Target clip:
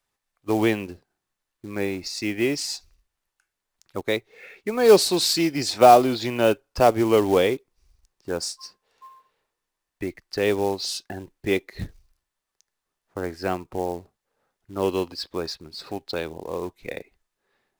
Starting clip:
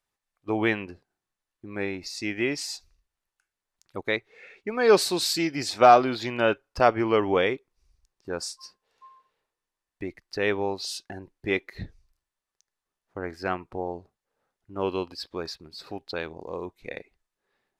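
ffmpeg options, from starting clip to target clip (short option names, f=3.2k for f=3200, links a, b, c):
-filter_complex "[0:a]acrossover=split=350|990|2500[a][b][c][d];[c]acompressor=threshold=-45dB:ratio=6[e];[a][b][e][d]amix=inputs=4:normalize=0,acrusher=bits=5:mode=log:mix=0:aa=0.000001,volume=4.5dB"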